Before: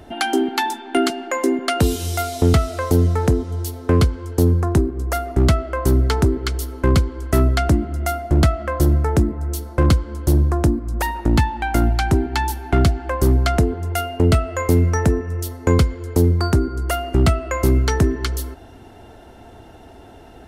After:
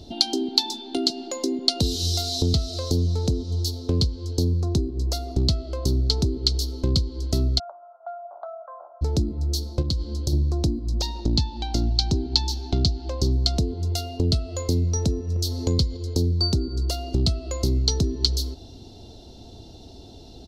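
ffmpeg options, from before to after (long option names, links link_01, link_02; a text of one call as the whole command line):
ffmpeg -i in.wav -filter_complex "[0:a]asplit=3[link_01][link_02][link_03];[link_01]afade=type=out:start_time=7.58:duration=0.02[link_04];[link_02]asuperpass=centerf=960:order=12:qfactor=1.1,afade=type=in:start_time=7.58:duration=0.02,afade=type=out:start_time=9.01:duration=0.02[link_05];[link_03]afade=type=in:start_time=9.01:duration=0.02[link_06];[link_04][link_05][link_06]amix=inputs=3:normalize=0,asplit=3[link_07][link_08][link_09];[link_07]afade=type=out:start_time=9.81:duration=0.02[link_10];[link_08]acompressor=threshold=-18dB:ratio=10:attack=3.2:release=140:knee=1:detection=peak,afade=type=in:start_time=9.81:duration=0.02,afade=type=out:start_time=10.32:duration=0.02[link_11];[link_09]afade=type=in:start_time=10.32:duration=0.02[link_12];[link_10][link_11][link_12]amix=inputs=3:normalize=0,asettb=1/sr,asplit=3[link_13][link_14][link_15];[link_13]atrim=end=11.004[link_16];[link_14]atrim=start=11:end=13.33,asetpts=PTS-STARTPTS,afade=type=in:duration=0.004:curve=qsin,afade=type=out:start_time=2.326:duration=0.004:curve=qsin,highshelf=frequency=7800:width_type=q:width=1.5:gain=-6.5[link_17];[link_15]atrim=start=13.326[link_18];[link_16][link_17]acrossfade=duration=0.004:curve1=hsin:curve2=qsin[link_19];[link_19][link_18]acrossfade=duration=0.004:curve1=qsin:curve2=hsin,asettb=1/sr,asplit=3[link_20][link_21][link_22];[link_20]atrim=end=15.364[link_23];[link_21]atrim=start=15.36:end=15.97,asetpts=PTS-STARTPTS,afade=type=in:duration=0.004:curve=qsin,afade=type=out:start_time=0.606:duration=0.004:curve=qsin,acompressor=mode=upward:threshold=-19dB:ratio=2.5:attack=3.2:release=140:knee=2.83:detection=peak[link_24];[link_22]atrim=start=15.966[link_25];[link_23][link_24]acrossfade=duration=0.004:curve1=hsin:curve2=qsin[link_26];[link_26][link_25]acrossfade=duration=0.004:curve1=qsin:curve2=hsin,acompressor=threshold=-22dB:ratio=2.5,firequalizer=gain_entry='entry(140,0);entry(1700,-24);entry(4100,14);entry(8900,-8)':delay=0.05:min_phase=1,volume=1dB" out.wav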